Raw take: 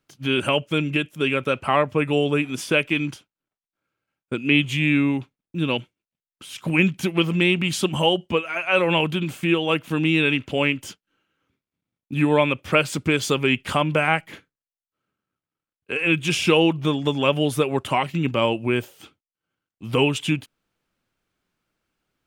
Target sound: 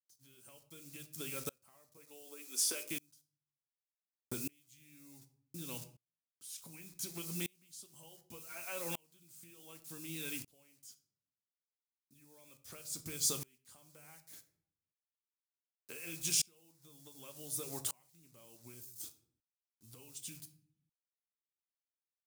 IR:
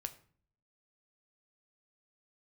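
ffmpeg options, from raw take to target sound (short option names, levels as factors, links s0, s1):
-filter_complex "[0:a]asettb=1/sr,asplit=3[s0][s1][s2];[s0]atrim=end=1.974[s3];[s1]atrim=start=1.97:end=2.91,asetpts=PTS-STARTPTS,afade=t=in:d=0.004:c=qsin,afade=t=out:st=0.936:d=0.004:c=qsin,highpass=f=320:w=0.5412,highpass=f=320:w=1.3066[s4];[s2]atrim=start=2.906[s5];[s3][s4]acrossfade=d=0.004:c1=hsin:c2=qsin[s6];[s6][s5]acrossfade=d=0.004:c1=qsin:c2=hsin,asettb=1/sr,asplit=3[s7][s8][s9];[s7]atrim=end=18.744[s10];[s8]atrim=start=18.74:end=19.88,asetpts=PTS-STARTPTS,afade=t=in:d=0.004:c=qsin,afade=t=out:st=1.136:d=0.004:c=qsin,equalizer=f=1600:w=0.46:g=-8[s11];[s9]atrim=start=19.876[s12];[s10][s11]acrossfade=d=0.004:c1=hsin:c2=qsin[s13];[s13][s12]acrossfade=d=0.004:c1=qsin:c2=hsin,acompressor=threshold=0.0224:ratio=12,acrusher=bits=8:mix=0:aa=0.000001,aexciter=amount=4.1:drive=9.9:freq=4200[s14];[1:a]atrim=start_sample=2205[s15];[s14][s15]afir=irnorm=-1:irlink=0,aeval=exprs='val(0)*pow(10,-33*if(lt(mod(-0.67*n/s,1),2*abs(-0.67)/1000),1-mod(-0.67*n/s,1)/(2*abs(-0.67)/1000),(mod(-0.67*n/s,1)-2*abs(-0.67)/1000)/(1-2*abs(-0.67)/1000))/20)':c=same,volume=0.841"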